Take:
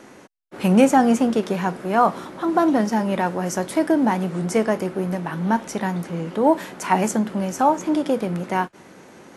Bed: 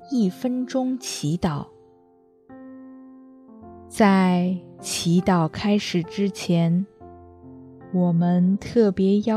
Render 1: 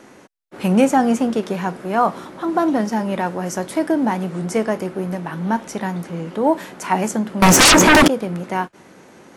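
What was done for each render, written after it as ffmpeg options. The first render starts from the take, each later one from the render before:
-filter_complex "[0:a]asettb=1/sr,asplit=3[a][b][c];[a]atrim=end=7.424[d];[b]atrim=start=7.42:end=8.08,asetpts=PTS-STARTPTS,afade=t=in:d=0.004:c=qsin,afade=t=out:st=0.656:d=0.004:c=qsin,aeval=exprs='0.473*sin(PI/2*10*val(0)/0.473)':c=same[e];[c]atrim=start=8.076[f];[d][e]acrossfade=d=0.004:c1=hsin:c2=qsin[g];[g][f]acrossfade=d=0.004:c1=qsin:c2=hsin"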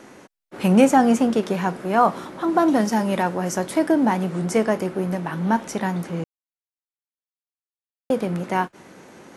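-filter_complex "[0:a]asettb=1/sr,asplit=3[a][b][c];[a]atrim=end=2.684[d];[b]atrim=start=2.68:end=3.23,asetpts=PTS-STARTPTS,afade=t=in:d=0.004:c=qsin,afade=t=out:st=0.546:d=0.004:c=qsin,highshelf=f=4.7k:g=6.5[e];[c]atrim=start=3.226[f];[d][e]acrossfade=d=0.004:c1=hsin:c2=qsin[g];[g][f]acrossfade=d=0.004:c1=qsin:c2=hsin,asplit=3[h][i][j];[h]atrim=end=6.24,asetpts=PTS-STARTPTS,afade=t=out:st=6.236:d=0.004:c=hsin[k];[i]atrim=start=6.24:end=8.1,asetpts=PTS-STARTPTS,volume=0[l];[j]atrim=start=8.1,asetpts=PTS-STARTPTS,afade=t=in:d=0.004:c=hsin[m];[k][l][m]concat=n=3:v=0:a=1"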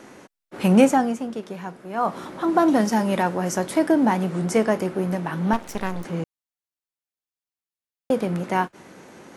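-filter_complex "[0:a]asettb=1/sr,asplit=3[a][b][c];[a]atrim=end=5.534[d];[b]atrim=start=5.53:end=6.05,asetpts=PTS-STARTPTS,afade=t=in:d=0.004:c=qsin,afade=t=out:st=0.516:d=0.004:c=qsin,aeval=exprs='max(val(0),0)':c=same[e];[c]atrim=start=6.046[f];[d][e]acrossfade=d=0.004:c1=hsin:c2=qsin[g];[g][f]acrossfade=d=0.004:c1=qsin:c2=hsin,asplit=3[h][i][j];[h]atrim=end=1.15,asetpts=PTS-STARTPTS,afade=t=out:st=0.81:d=0.34:silence=0.298538[k];[i]atrim=start=1.15:end=1.94,asetpts=PTS-STARTPTS,volume=-10.5dB[l];[j]atrim=start=1.94,asetpts=PTS-STARTPTS,afade=t=in:d=0.34:silence=0.298538[m];[k][l][m]concat=n=3:v=0:a=1"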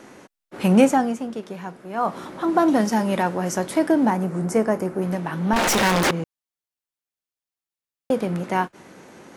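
-filter_complex "[0:a]asettb=1/sr,asplit=3[a][b][c];[a]atrim=end=4.104[d];[b]atrim=start=4.1:end=5.02,asetpts=PTS-STARTPTS,afade=t=in:d=0.004:c=qsin,afade=t=out:st=0.916:d=0.004:c=qsin,equalizer=f=3.4k:t=o:w=1.2:g=-10.5[e];[c]atrim=start=5.016[f];[d][e]acrossfade=d=0.004:c1=hsin:c2=qsin[g];[g][f]acrossfade=d=0.004:c1=qsin:c2=hsin,asettb=1/sr,asplit=3[h][i][j];[h]atrim=end=5.564[k];[i]atrim=start=5.56:end=6.11,asetpts=PTS-STARTPTS,afade=t=in:d=0.004:c=qsin,afade=t=out:st=0.546:d=0.004:c=qsin,asplit=2[l][m];[m]highpass=f=720:p=1,volume=40dB,asoftclip=type=tanh:threshold=-10.5dB[n];[l][n]amix=inputs=2:normalize=0,lowpass=f=6.6k:p=1,volume=-6dB[o];[j]atrim=start=6.106[p];[k][o]acrossfade=d=0.004:c1=hsin:c2=qsin[q];[q][p]acrossfade=d=0.004:c1=qsin:c2=hsin"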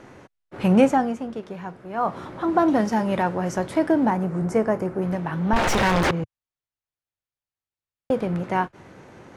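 -af "lowpass=f=2.7k:p=1,lowshelf=f=150:t=q:w=1.5:g=7.5"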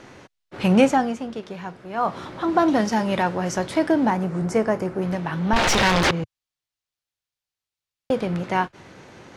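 -af "equalizer=f=4.3k:w=0.63:g=8"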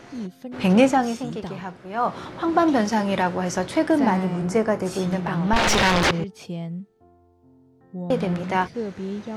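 -filter_complex "[1:a]volume=-11.5dB[a];[0:a][a]amix=inputs=2:normalize=0"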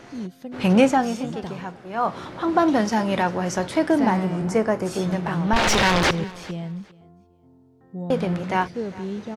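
-af "aecho=1:1:403|806:0.0891|0.0187"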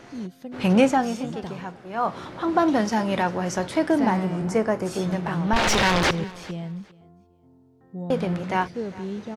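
-af "volume=-1.5dB"

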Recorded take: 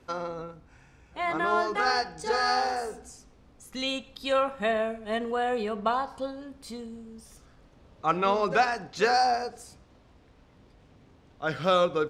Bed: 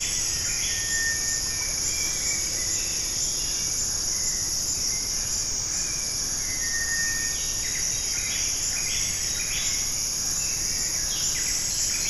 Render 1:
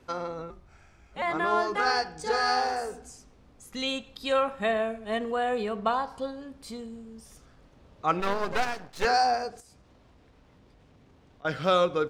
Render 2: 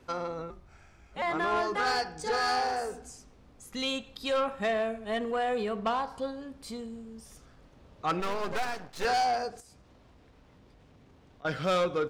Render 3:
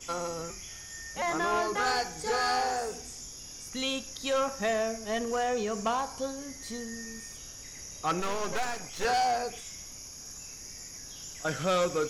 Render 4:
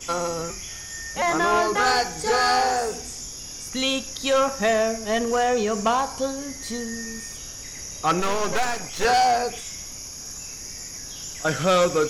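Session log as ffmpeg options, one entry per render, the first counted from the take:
-filter_complex "[0:a]asettb=1/sr,asplit=3[a][b][c];[a]atrim=end=0.504[d];[b]atrim=start=0.5:end=1.22,asetpts=PTS-STARTPTS,afade=t=in:d=0.004:c=qsin,afade=t=out:st=0.716:d=0.004:c=qsin,afreqshift=-120[e];[c]atrim=start=1.216[f];[d][e]acrossfade=d=0.004:c1=hsin:c2=qsin[g];[g][f]acrossfade=d=0.004:c1=qsin:c2=hsin,asettb=1/sr,asplit=3[h][i][j];[h]atrim=end=8.204[k];[i]atrim=start=8.2:end=9.05,asetpts=PTS-STARTPTS,afade=t=in:d=0.004:c=qsin,afade=t=out:st=0.846:d=0.004:c=qsin,aeval=exprs='max(val(0),0)':c=same[l];[j]atrim=start=9.046[m];[k][l]acrossfade=d=0.004:c1=hsin:c2=qsin[n];[n][m]acrossfade=d=0.004:c1=qsin:c2=hsin,asettb=1/sr,asplit=3[o][p][q];[o]atrim=end=9.604[r];[p]atrim=start=9.6:end=11.45,asetpts=PTS-STARTPTS,afade=t=in:d=0.004:c=qsin,afade=t=out:st=1.846:d=0.004:c=qsin,acompressor=threshold=-53dB:ratio=5:attack=3.2:release=140:knee=1:detection=peak[s];[q]atrim=start=11.446[t];[r][s]acrossfade=d=0.004:c1=hsin:c2=qsin[u];[u][t]acrossfade=d=0.004:c1=qsin:c2=hsin"
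-af "asoftclip=type=tanh:threshold=-22dB"
-filter_complex "[1:a]volume=-18dB[a];[0:a][a]amix=inputs=2:normalize=0"
-af "volume=8dB"

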